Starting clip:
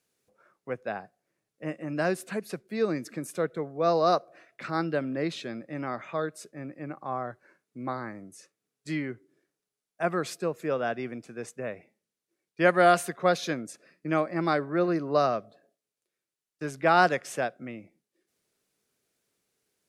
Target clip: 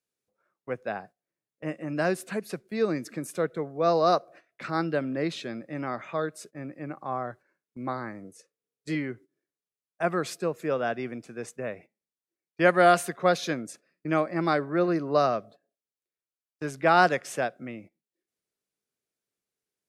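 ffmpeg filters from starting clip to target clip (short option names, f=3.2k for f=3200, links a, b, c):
-filter_complex "[0:a]agate=range=-13dB:threshold=-49dB:ratio=16:detection=peak,asettb=1/sr,asplit=3[a][b][c];[a]atrim=end=8.244[d];[b]atrim=start=8.24:end=8.95,asetpts=PTS-STARTPTS,afade=t=in:d=0.004:c=qsin,afade=t=out:st=0.706:d=0.004:c=qsin,equalizer=f=480:t=o:w=0.39:g=12[e];[c]atrim=start=8.946[f];[d][e]acrossfade=d=0.004:c1=hsin:c2=qsin[g];[g][f]acrossfade=d=0.004:c1=qsin:c2=hsin,volume=1dB"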